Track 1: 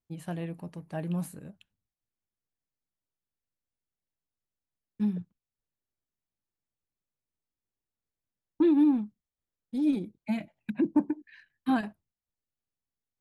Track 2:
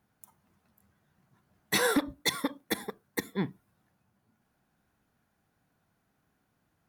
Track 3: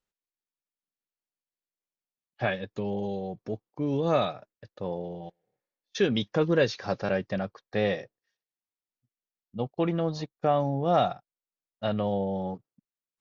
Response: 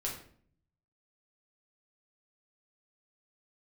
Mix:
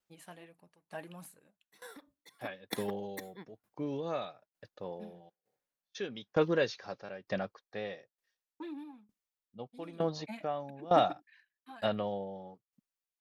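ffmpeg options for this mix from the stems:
-filter_complex "[0:a]lowshelf=f=440:g=-10.5,aphaser=in_gain=1:out_gain=1:delay=4.8:decay=0.4:speed=1.6:type=triangular,volume=1.06[s0];[1:a]volume=0.944[s1];[2:a]volume=1.06,asplit=2[s2][s3];[s3]apad=whole_len=303453[s4];[s1][s4]sidechaingate=range=0.1:threshold=0.00501:ratio=16:detection=peak[s5];[s0][s5][s2]amix=inputs=3:normalize=0,lowshelf=f=210:g=-10.5,aeval=exprs='val(0)*pow(10,-19*if(lt(mod(1.1*n/s,1),2*abs(1.1)/1000),1-mod(1.1*n/s,1)/(2*abs(1.1)/1000),(mod(1.1*n/s,1)-2*abs(1.1)/1000)/(1-2*abs(1.1)/1000))/20)':c=same"

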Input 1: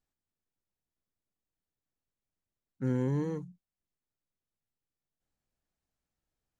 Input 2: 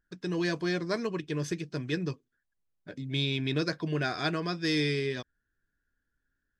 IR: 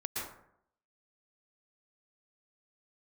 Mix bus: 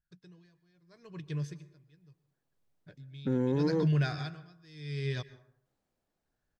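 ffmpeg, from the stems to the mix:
-filter_complex "[0:a]equalizer=f=460:w=0.32:g=10.5,adelay=450,volume=0.531[s0];[1:a]lowshelf=f=190:t=q:w=3:g=6,aeval=exprs='val(0)*pow(10,-30*(0.5-0.5*cos(2*PI*0.77*n/s))/20)':c=same,volume=0.794,afade=t=in:st=2.48:d=0.71:silence=0.251189,afade=t=out:st=4.11:d=0.54:silence=0.421697,asplit=2[s1][s2];[s2]volume=0.133[s3];[2:a]atrim=start_sample=2205[s4];[s3][s4]afir=irnorm=-1:irlink=0[s5];[s0][s1][s5]amix=inputs=3:normalize=0,equalizer=f=4200:w=1.5:g=2.5,dynaudnorm=f=340:g=7:m=2,alimiter=limit=0.0891:level=0:latency=1:release=148"

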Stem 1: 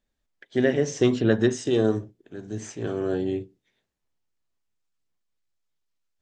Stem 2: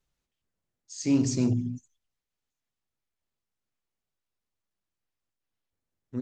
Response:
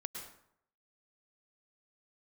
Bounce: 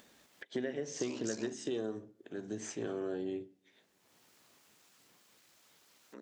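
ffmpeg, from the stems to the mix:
-filter_complex "[0:a]acompressor=threshold=0.0316:ratio=10,volume=0.708,asplit=2[s0][s1];[s1]volume=0.0794[s2];[1:a]highpass=590,aeval=exprs='val(0)*sin(2*PI*34*n/s)':c=same,volume=0.501[s3];[2:a]atrim=start_sample=2205[s4];[s2][s4]afir=irnorm=-1:irlink=0[s5];[s0][s3][s5]amix=inputs=3:normalize=0,highpass=190,acompressor=mode=upward:threshold=0.00631:ratio=2.5"

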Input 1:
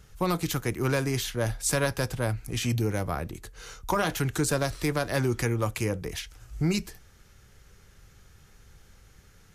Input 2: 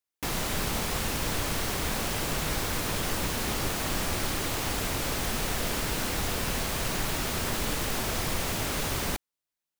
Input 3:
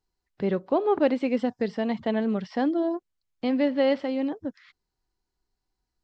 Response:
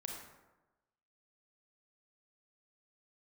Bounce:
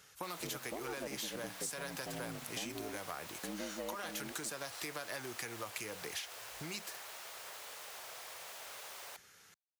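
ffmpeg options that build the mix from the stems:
-filter_complex "[0:a]acompressor=threshold=0.0316:ratio=6,highpass=f=1100:p=1,asoftclip=type=tanh:threshold=0.0473,volume=1.19[s0];[1:a]highpass=f=530:w=0.5412,highpass=f=530:w=1.3066,volume=0.15[s1];[2:a]aeval=exprs='if(lt(val(0),0),0.708*val(0),val(0))':c=same,bandreject=f=60:t=h:w=6,bandreject=f=120:t=h:w=6,bandreject=f=180:t=h:w=6,bandreject=f=240:t=h:w=6,aeval=exprs='val(0)*sin(2*PI*54*n/s)':c=same,volume=0.237[s2];[s0][s1][s2]amix=inputs=3:normalize=0,highpass=70,acompressor=threshold=0.0126:ratio=6"

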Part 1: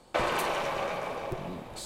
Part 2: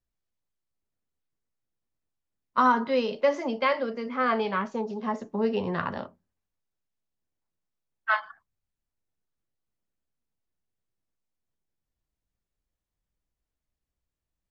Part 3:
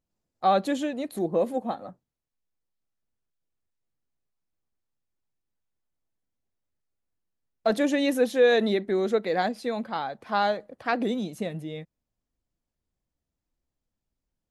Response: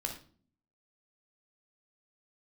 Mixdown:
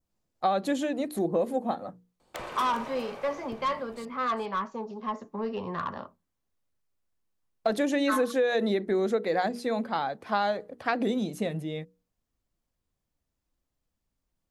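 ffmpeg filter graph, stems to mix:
-filter_complex "[0:a]aeval=exprs='(mod(6.31*val(0)+1,2)-1)/6.31':c=same,adelay=2200,volume=0.299,asplit=2[s0][s1];[s1]volume=0.316[s2];[1:a]equalizer=f=1100:t=o:w=0.42:g=9.5,asoftclip=type=tanh:threshold=0.141,volume=0.531[s3];[2:a]bandreject=f=60:t=h:w=6,bandreject=f=120:t=h:w=6,bandreject=f=180:t=h:w=6,bandreject=f=240:t=h:w=6,bandreject=f=300:t=h:w=6,bandreject=f=360:t=h:w=6,bandreject=f=420:t=h:w=6,bandreject=f=480:t=h:w=6,acompressor=threshold=0.0631:ratio=6,volume=1.26[s4];[s2]aecho=0:1:405:1[s5];[s0][s3][s4][s5]amix=inputs=4:normalize=0,adynamicequalizer=threshold=0.00398:dfrequency=3100:dqfactor=1.5:tfrequency=3100:tqfactor=1.5:attack=5:release=100:ratio=0.375:range=2:mode=cutabove:tftype=bell"

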